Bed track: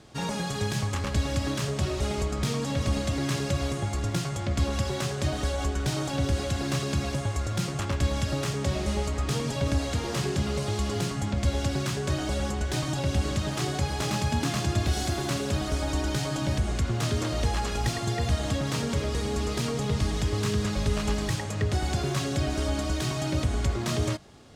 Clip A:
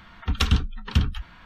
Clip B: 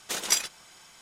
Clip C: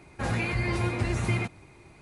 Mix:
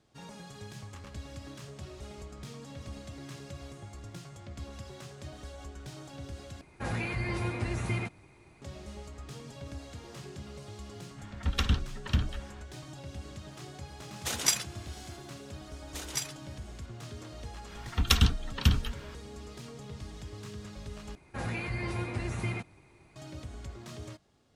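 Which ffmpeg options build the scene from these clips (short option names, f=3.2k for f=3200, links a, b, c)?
-filter_complex "[3:a]asplit=2[a][b];[1:a]asplit=2[c][d];[2:a]asplit=2[e][f];[0:a]volume=-16.5dB[g];[c]equalizer=f=1.8k:w=6.8:g=3[h];[d]aemphasis=mode=production:type=50kf[i];[g]asplit=3[j][k][l];[j]atrim=end=6.614[m];[a]atrim=end=2.01,asetpts=PTS-STARTPTS,volume=-5dB[n];[k]atrim=start=8.616:end=21.154[o];[b]atrim=end=2.01,asetpts=PTS-STARTPTS,volume=-6.5dB[p];[l]atrim=start=23.156[q];[h]atrim=end=1.45,asetpts=PTS-STARTPTS,volume=-6.5dB,afade=t=in:d=0.004:c=hsin,afade=t=out:st=1.446:d=0.004:c=hsin,adelay=11180[r];[e]atrim=end=1.01,asetpts=PTS-STARTPTS,volume=-2dB,afade=t=in:d=0.004:c=hsin,afade=t=out:st=1.006:d=0.004:c=hsin,adelay=14160[s];[f]atrim=end=1.01,asetpts=PTS-STARTPTS,volume=-10dB,afade=t=in:d=0.004:c=hsin,afade=t=out:st=1.006:d=0.004:c=hsin,adelay=15850[t];[i]atrim=end=1.45,asetpts=PTS-STARTPTS,volume=-3dB,afade=t=in:d=0.004:c=hsin,afade=t=out:st=1.446:d=0.004:c=hsin,adelay=17700[u];[m][n]acrossfade=d=0.004:c1=hsin:c2=hsin[v];[v][o]acrossfade=d=0.004:c1=hsin:c2=hsin[w];[w][p]acrossfade=d=0.004:c1=hsin:c2=hsin[x];[x][q]acrossfade=d=0.004:c1=hsin:c2=hsin[y];[y][r][s][t][u]amix=inputs=5:normalize=0"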